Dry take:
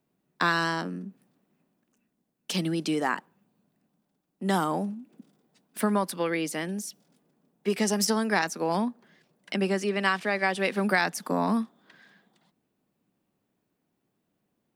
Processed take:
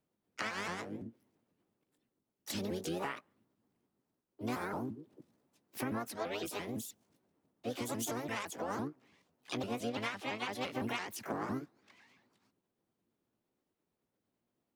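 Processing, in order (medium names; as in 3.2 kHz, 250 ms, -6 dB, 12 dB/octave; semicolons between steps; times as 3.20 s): sawtooth pitch modulation +5.5 st, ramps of 169 ms; compression 10:1, threshold -27 dBFS, peak gain reduction 9 dB; harmony voices -12 st -7 dB, +3 st -7 dB, +7 st -7 dB; trim -8.5 dB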